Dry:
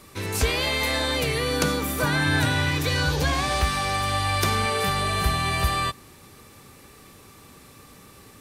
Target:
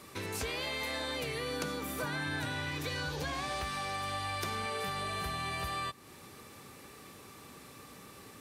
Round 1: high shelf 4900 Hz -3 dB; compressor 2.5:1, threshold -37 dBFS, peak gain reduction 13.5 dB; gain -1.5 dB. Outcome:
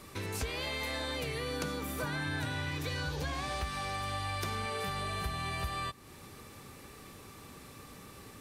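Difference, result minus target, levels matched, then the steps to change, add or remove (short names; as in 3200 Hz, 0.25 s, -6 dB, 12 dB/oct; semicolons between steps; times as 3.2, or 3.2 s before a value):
125 Hz band +3.5 dB
add first: HPF 150 Hz 6 dB/oct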